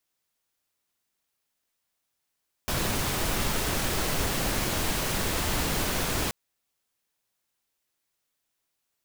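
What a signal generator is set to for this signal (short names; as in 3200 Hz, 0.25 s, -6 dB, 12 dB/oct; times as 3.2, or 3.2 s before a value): noise pink, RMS -27.5 dBFS 3.63 s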